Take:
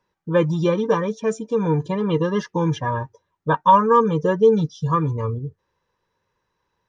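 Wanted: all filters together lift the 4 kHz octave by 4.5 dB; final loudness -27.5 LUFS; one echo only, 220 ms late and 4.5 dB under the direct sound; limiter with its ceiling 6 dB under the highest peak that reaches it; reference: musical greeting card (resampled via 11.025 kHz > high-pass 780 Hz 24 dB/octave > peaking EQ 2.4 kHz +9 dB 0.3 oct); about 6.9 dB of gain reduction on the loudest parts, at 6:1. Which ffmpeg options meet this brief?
-af "equalizer=f=4000:t=o:g=4.5,acompressor=threshold=0.158:ratio=6,alimiter=limit=0.188:level=0:latency=1,aecho=1:1:220:0.596,aresample=11025,aresample=44100,highpass=f=780:w=0.5412,highpass=f=780:w=1.3066,equalizer=f=2400:t=o:w=0.3:g=9,volume=1.33"

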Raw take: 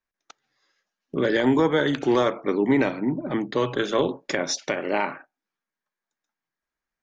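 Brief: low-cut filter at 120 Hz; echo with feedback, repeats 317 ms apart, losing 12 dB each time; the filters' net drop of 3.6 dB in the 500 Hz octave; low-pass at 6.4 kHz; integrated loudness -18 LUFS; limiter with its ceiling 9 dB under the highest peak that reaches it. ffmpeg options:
-af "highpass=120,lowpass=6400,equalizer=f=500:t=o:g=-4.5,alimiter=limit=0.106:level=0:latency=1,aecho=1:1:317|634|951:0.251|0.0628|0.0157,volume=3.98"

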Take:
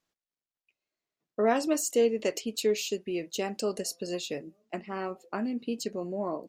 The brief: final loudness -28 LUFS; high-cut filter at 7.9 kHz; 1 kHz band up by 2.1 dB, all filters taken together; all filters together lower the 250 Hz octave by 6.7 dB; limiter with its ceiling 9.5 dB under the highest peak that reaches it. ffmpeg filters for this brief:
-af "lowpass=7900,equalizer=f=250:t=o:g=-9,equalizer=f=1000:t=o:g=4,volume=2.11,alimiter=limit=0.168:level=0:latency=1"

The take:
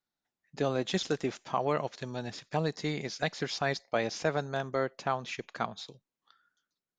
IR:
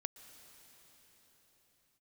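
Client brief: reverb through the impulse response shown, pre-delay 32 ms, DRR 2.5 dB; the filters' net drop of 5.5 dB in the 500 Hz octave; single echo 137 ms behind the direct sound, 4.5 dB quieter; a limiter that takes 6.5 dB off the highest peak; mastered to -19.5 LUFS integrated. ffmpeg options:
-filter_complex "[0:a]equalizer=f=500:t=o:g=-7,alimiter=limit=0.0631:level=0:latency=1,aecho=1:1:137:0.596,asplit=2[s0][s1];[1:a]atrim=start_sample=2205,adelay=32[s2];[s1][s2]afir=irnorm=-1:irlink=0,volume=1[s3];[s0][s3]amix=inputs=2:normalize=0,volume=5.62"

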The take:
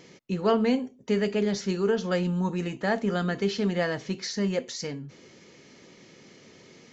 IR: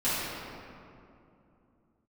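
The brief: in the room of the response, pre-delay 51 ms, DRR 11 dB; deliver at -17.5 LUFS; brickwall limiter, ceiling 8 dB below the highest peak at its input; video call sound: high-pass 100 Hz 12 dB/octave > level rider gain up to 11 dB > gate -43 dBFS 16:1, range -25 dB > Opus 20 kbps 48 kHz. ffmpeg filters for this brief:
-filter_complex "[0:a]alimiter=limit=0.106:level=0:latency=1,asplit=2[s0][s1];[1:a]atrim=start_sample=2205,adelay=51[s2];[s1][s2]afir=irnorm=-1:irlink=0,volume=0.0708[s3];[s0][s3]amix=inputs=2:normalize=0,highpass=100,dynaudnorm=m=3.55,agate=range=0.0562:threshold=0.00708:ratio=16,volume=3.76" -ar 48000 -c:a libopus -b:a 20k

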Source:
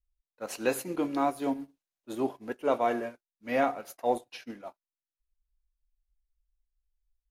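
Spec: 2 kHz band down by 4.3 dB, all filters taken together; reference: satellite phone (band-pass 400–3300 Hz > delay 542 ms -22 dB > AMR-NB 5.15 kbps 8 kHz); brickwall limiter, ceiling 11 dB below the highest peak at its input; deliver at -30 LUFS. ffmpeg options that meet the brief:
-af "equalizer=f=2000:t=o:g=-5,alimiter=level_in=1.12:limit=0.0631:level=0:latency=1,volume=0.891,highpass=400,lowpass=3300,aecho=1:1:542:0.0794,volume=3.55" -ar 8000 -c:a libopencore_amrnb -b:a 5150

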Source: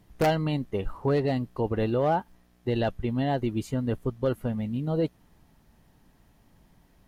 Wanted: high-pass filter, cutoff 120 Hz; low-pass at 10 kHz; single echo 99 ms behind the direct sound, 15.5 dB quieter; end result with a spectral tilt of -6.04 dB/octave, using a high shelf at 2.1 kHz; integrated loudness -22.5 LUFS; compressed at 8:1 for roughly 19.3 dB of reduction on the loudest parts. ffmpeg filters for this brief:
-af "highpass=120,lowpass=10000,highshelf=f=2100:g=5.5,acompressor=threshold=0.01:ratio=8,aecho=1:1:99:0.168,volume=11.9"

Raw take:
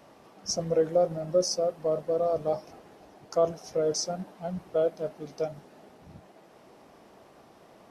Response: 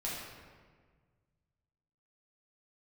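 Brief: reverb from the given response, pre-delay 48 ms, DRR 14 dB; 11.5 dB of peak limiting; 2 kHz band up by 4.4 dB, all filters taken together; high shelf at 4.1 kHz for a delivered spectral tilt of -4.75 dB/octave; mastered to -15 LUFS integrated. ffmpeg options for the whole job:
-filter_complex "[0:a]equalizer=f=2000:t=o:g=7.5,highshelf=f=4100:g=-6.5,alimiter=level_in=1.12:limit=0.0631:level=0:latency=1,volume=0.891,asplit=2[s0][s1];[1:a]atrim=start_sample=2205,adelay=48[s2];[s1][s2]afir=irnorm=-1:irlink=0,volume=0.141[s3];[s0][s3]amix=inputs=2:normalize=0,volume=10"

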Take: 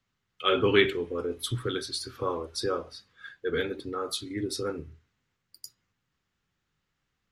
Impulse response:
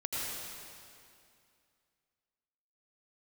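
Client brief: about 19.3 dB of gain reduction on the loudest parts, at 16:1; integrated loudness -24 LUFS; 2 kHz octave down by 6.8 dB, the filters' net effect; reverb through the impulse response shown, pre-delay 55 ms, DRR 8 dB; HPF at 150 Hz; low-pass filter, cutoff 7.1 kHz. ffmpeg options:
-filter_complex "[0:a]highpass=150,lowpass=7100,equalizer=f=2000:t=o:g=-8.5,acompressor=threshold=0.0141:ratio=16,asplit=2[s0][s1];[1:a]atrim=start_sample=2205,adelay=55[s2];[s1][s2]afir=irnorm=-1:irlink=0,volume=0.224[s3];[s0][s3]amix=inputs=2:normalize=0,volume=7.94"

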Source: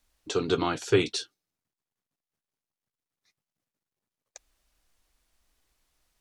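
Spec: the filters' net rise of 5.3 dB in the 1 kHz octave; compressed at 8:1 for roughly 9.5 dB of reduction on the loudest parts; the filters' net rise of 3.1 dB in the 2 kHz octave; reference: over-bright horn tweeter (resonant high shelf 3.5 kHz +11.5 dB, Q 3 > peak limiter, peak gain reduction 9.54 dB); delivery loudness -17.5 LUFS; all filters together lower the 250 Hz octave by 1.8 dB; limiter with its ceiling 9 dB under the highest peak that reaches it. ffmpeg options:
-af "equalizer=f=250:t=o:g=-3.5,equalizer=f=1000:t=o:g=6,equalizer=f=2000:t=o:g=8,acompressor=threshold=0.0562:ratio=8,alimiter=limit=0.0708:level=0:latency=1,highshelf=f=3500:t=q:w=3:g=11.5,volume=5.01,alimiter=limit=0.596:level=0:latency=1"

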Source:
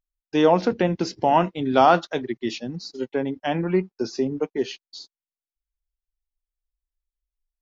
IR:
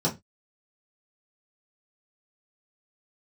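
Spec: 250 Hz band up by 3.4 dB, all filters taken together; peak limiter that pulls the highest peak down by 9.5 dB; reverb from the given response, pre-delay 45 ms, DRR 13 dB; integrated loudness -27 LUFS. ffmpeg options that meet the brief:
-filter_complex "[0:a]equalizer=f=250:t=o:g=4.5,alimiter=limit=0.211:level=0:latency=1,asplit=2[s0][s1];[1:a]atrim=start_sample=2205,adelay=45[s2];[s1][s2]afir=irnorm=-1:irlink=0,volume=0.0668[s3];[s0][s3]amix=inputs=2:normalize=0,volume=0.75"

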